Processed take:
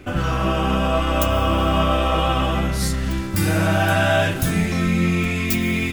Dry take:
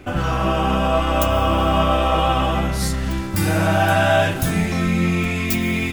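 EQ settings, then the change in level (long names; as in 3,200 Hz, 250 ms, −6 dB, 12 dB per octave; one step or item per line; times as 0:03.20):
parametric band 810 Hz −4.5 dB 0.7 octaves
0.0 dB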